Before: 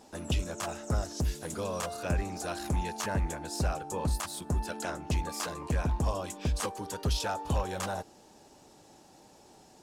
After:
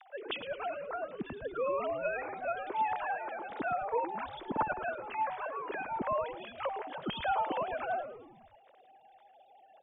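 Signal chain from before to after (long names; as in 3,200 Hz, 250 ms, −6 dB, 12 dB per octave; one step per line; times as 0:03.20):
three sine waves on the formant tracks
echo with shifted repeats 108 ms, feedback 47%, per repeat −130 Hz, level −10.5 dB
level −4 dB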